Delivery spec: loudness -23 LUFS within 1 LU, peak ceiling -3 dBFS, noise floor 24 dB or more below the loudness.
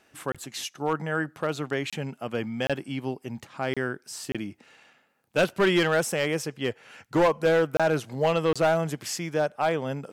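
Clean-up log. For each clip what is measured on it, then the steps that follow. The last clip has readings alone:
clipped 0.9%; flat tops at -16.0 dBFS; dropouts 7; longest dropout 26 ms; loudness -27.0 LUFS; peak -16.0 dBFS; loudness target -23.0 LUFS
-> clip repair -16 dBFS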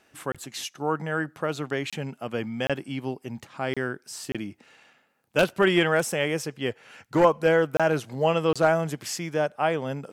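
clipped 0.0%; dropouts 7; longest dropout 26 ms
-> interpolate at 0.32/1.9/2.67/3.74/4.32/7.77/8.53, 26 ms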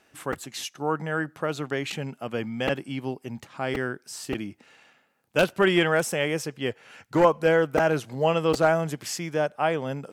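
dropouts 0; loudness -26.0 LUFS; peak -7.0 dBFS; loudness target -23.0 LUFS
-> gain +3 dB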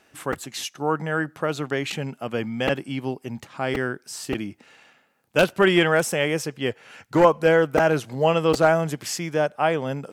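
loudness -23.0 LUFS; peak -4.0 dBFS; noise floor -62 dBFS

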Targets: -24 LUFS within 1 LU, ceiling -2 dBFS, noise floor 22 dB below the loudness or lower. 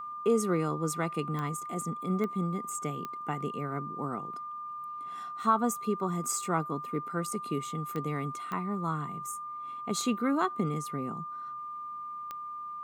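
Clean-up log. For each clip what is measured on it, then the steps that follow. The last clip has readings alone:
clicks 6; steady tone 1200 Hz; tone level -37 dBFS; loudness -33.0 LUFS; peak -13.0 dBFS; loudness target -24.0 LUFS
-> de-click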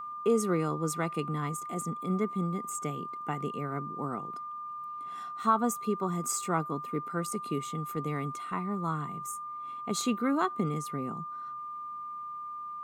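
clicks 0; steady tone 1200 Hz; tone level -37 dBFS
-> notch 1200 Hz, Q 30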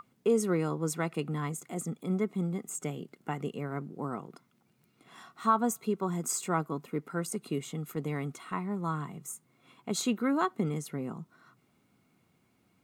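steady tone none; loudness -33.0 LUFS; peak -13.5 dBFS; loudness target -24.0 LUFS
-> gain +9 dB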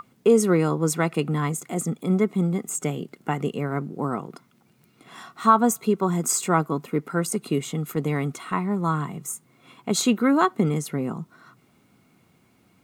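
loudness -24.0 LUFS; peak -4.5 dBFS; noise floor -61 dBFS

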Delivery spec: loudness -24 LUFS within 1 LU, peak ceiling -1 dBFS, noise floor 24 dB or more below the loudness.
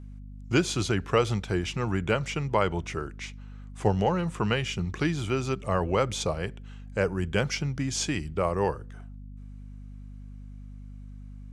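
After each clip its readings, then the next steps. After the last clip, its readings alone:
hum 50 Hz; harmonics up to 250 Hz; hum level -40 dBFS; loudness -28.0 LUFS; peak -8.0 dBFS; loudness target -24.0 LUFS
-> de-hum 50 Hz, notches 5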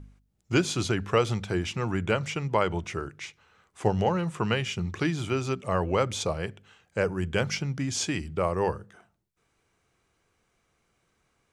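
hum none; loudness -28.5 LUFS; peak -8.5 dBFS; loudness target -24.0 LUFS
-> gain +4.5 dB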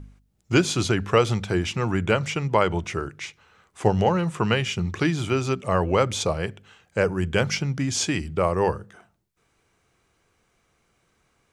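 loudness -24.0 LUFS; peak -4.0 dBFS; noise floor -69 dBFS

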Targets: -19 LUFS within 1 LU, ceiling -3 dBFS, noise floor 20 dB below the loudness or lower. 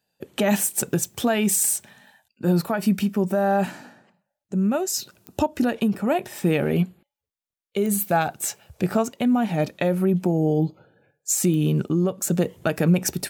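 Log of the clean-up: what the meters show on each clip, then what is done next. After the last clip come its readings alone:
clicks 4; loudness -23.0 LUFS; peak -10.0 dBFS; loudness target -19.0 LUFS
-> de-click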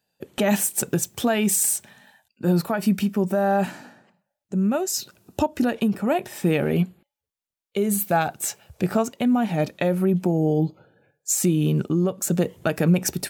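clicks 0; loudness -23.0 LUFS; peak -10.0 dBFS; loudness target -19.0 LUFS
-> gain +4 dB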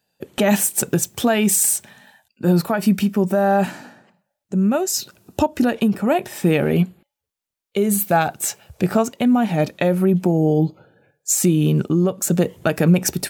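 loudness -19.0 LUFS; peak -6.0 dBFS; noise floor -83 dBFS

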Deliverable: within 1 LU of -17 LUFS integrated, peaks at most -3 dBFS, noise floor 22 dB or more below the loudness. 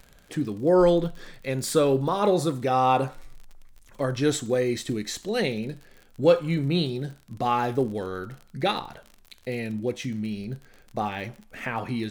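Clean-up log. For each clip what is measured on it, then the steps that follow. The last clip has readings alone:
ticks 42/s; loudness -26.0 LUFS; peak -7.5 dBFS; loudness target -17.0 LUFS
-> de-click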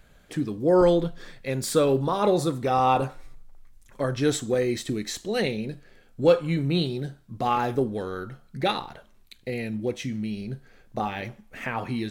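ticks 1.2/s; loudness -26.0 LUFS; peak -7.5 dBFS; loudness target -17.0 LUFS
-> gain +9 dB; limiter -3 dBFS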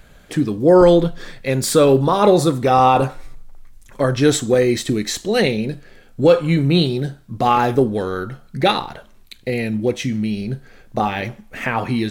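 loudness -17.5 LUFS; peak -3.0 dBFS; noise floor -47 dBFS

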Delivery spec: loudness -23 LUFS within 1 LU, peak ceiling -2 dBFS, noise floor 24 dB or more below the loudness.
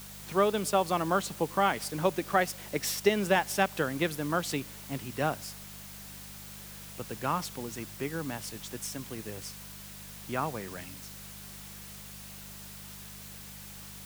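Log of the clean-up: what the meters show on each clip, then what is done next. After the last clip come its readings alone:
hum 50 Hz; harmonics up to 200 Hz; hum level -48 dBFS; noise floor -46 dBFS; noise floor target -55 dBFS; loudness -31.0 LUFS; peak -10.0 dBFS; loudness target -23.0 LUFS
-> de-hum 50 Hz, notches 4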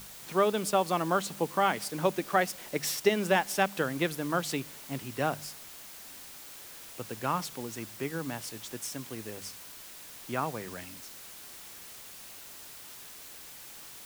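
hum none; noise floor -47 dBFS; noise floor target -56 dBFS
-> denoiser 9 dB, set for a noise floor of -47 dBFS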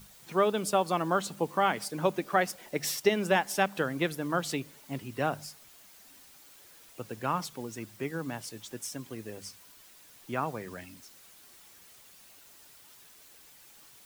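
noise floor -56 dBFS; loudness -31.0 LUFS; peak -10.5 dBFS; loudness target -23.0 LUFS
-> gain +8 dB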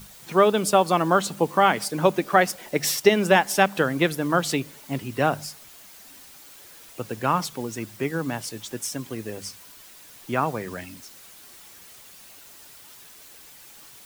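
loudness -23.0 LUFS; peak -2.5 dBFS; noise floor -48 dBFS

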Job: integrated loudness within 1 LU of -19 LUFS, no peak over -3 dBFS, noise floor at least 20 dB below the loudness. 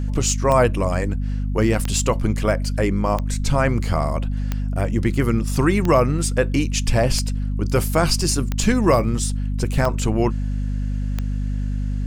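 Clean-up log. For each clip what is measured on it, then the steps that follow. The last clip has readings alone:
clicks 9; hum 50 Hz; harmonics up to 250 Hz; hum level -21 dBFS; loudness -21.0 LUFS; peak -3.5 dBFS; loudness target -19.0 LUFS
-> de-click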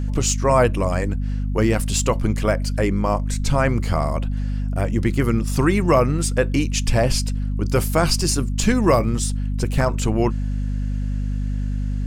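clicks 0; hum 50 Hz; harmonics up to 250 Hz; hum level -21 dBFS
-> notches 50/100/150/200/250 Hz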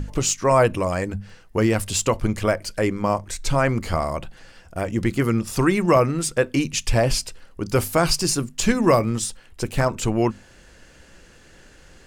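hum none; loudness -22.0 LUFS; peak -5.0 dBFS; loudness target -19.0 LUFS
-> gain +3 dB; limiter -3 dBFS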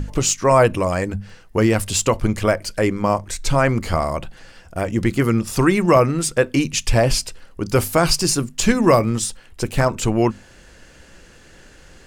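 loudness -19.0 LUFS; peak -3.0 dBFS; noise floor -47 dBFS

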